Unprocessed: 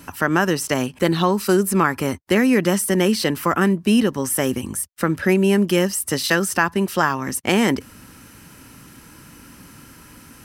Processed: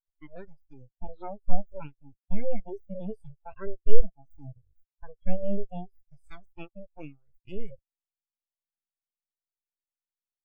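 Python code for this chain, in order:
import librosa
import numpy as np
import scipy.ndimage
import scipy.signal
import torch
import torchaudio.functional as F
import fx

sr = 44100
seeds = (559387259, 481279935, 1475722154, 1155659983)

y = np.abs(x)
y = fx.noise_reduce_blind(y, sr, reduce_db=9)
y = fx.spectral_expand(y, sr, expansion=2.5)
y = F.gain(torch.from_numpy(y), 3.0).numpy()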